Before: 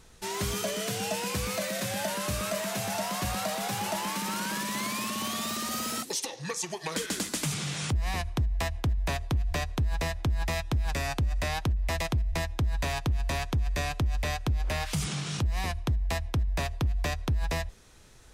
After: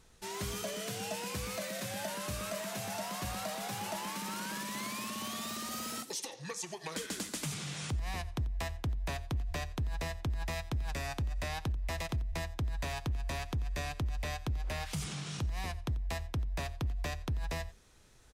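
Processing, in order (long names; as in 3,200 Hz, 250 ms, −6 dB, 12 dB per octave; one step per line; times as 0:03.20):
single-tap delay 89 ms −18.5 dB
level −7 dB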